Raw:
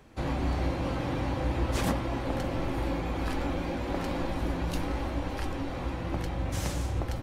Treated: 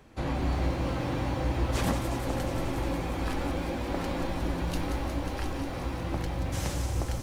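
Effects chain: on a send: thin delay 0.18 s, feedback 82%, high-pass 4600 Hz, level -5.5 dB; on the sum: lo-fi delay 0.172 s, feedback 35%, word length 8-bit, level -14.5 dB

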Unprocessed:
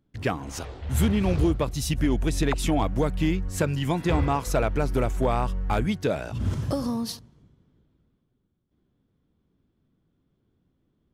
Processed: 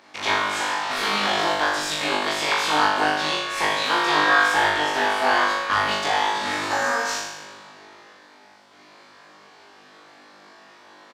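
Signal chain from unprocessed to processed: per-bin compression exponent 0.6; HPF 800 Hz 12 dB/oct; high shelf 5900 Hz +10 dB; notch 2000 Hz, Q 16; in parallel at -2 dB: limiter -22 dBFS, peak gain reduction 11.5 dB; on the sum: formant shift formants +5 st; one-sided clip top -17.5 dBFS; air absorption 150 m; on a send: flutter echo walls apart 3.4 m, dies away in 0.93 s; on the sum: downsampling 32000 Hz; gain +1.5 dB

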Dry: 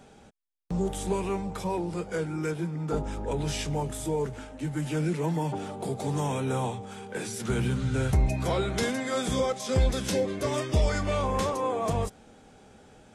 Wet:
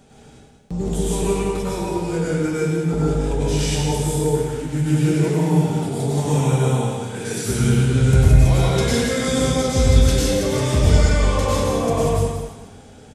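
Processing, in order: bell 1100 Hz -6 dB 2.9 oct; on a send: echo 0.178 s -8.5 dB; on the sum: plate-style reverb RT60 1.2 s, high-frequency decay 0.95×, pre-delay 85 ms, DRR -6.5 dB; gain +4 dB

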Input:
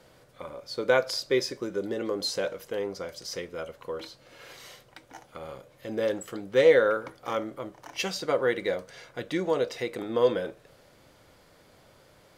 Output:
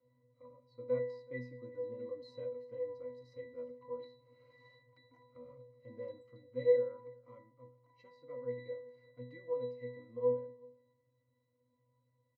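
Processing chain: octave resonator B, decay 0.53 s; echo 0.377 s -23 dB; vocal rider within 5 dB 2 s

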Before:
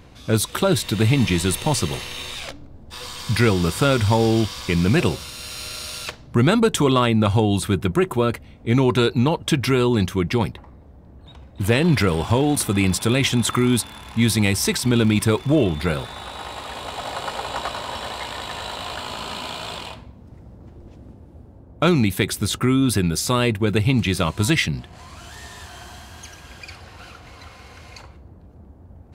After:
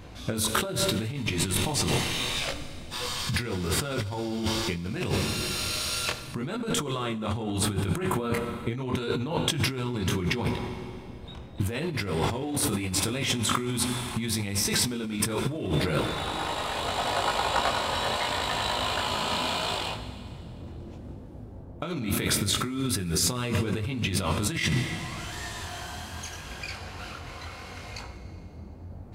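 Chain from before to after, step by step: chorus 0.75 Hz, delay 19.5 ms, depth 4.5 ms; Schroeder reverb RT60 2.3 s, combs from 32 ms, DRR 11 dB; negative-ratio compressor -28 dBFS, ratio -1

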